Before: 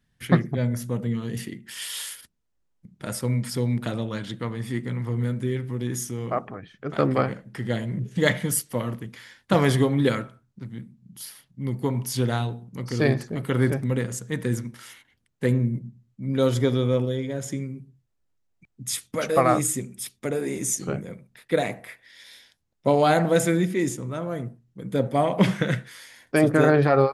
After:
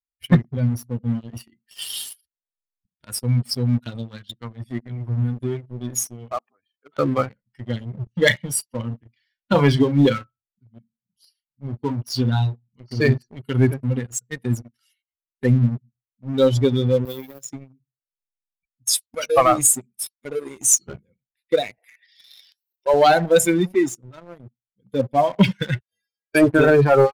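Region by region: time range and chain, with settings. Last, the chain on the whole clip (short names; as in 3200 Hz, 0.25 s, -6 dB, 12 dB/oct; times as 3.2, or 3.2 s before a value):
6.36–6.97 HPF 170 Hz + low shelf 220 Hz -7 dB
8.03–13.01 air absorption 52 m + doubler 35 ms -8 dB
17.05–17.48 HPF 150 Hz + short-mantissa float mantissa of 2-bit
21.78–22.94 transient shaper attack -3 dB, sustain +11 dB + upward compressor, threshold -29 dBFS + brick-wall FIR high-pass 300 Hz
25.8–26.35 bell 520 Hz +14.5 dB 1.8 oct + metallic resonator 99 Hz, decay 0.68 s, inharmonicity 0.03 + dispersion lows, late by 0.129 s, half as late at 1000 Hz
whole clip: per-bin expansion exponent 2; bell 7100 Hz +5 dB 2.2 oct; sample leveller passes 2; gain +2 dB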